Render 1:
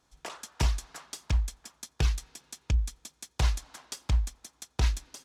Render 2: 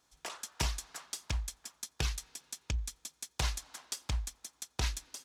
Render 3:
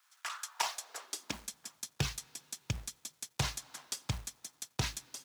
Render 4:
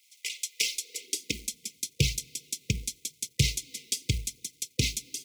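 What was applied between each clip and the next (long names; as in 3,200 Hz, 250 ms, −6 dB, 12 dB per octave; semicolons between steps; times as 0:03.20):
spectral tilt +1.5 dB per octave; level −3 dB
log-companded quantiser 6 bits; high-pass filter sweep 1,300 Hz → 120 Hz, 0:00.38–0:01.73
phase shifter 0.91 Hz, delay 5 ms, feedback 34%; linear-phase brick-wall band-stop 510–2,000 Hz; level +8.5 dB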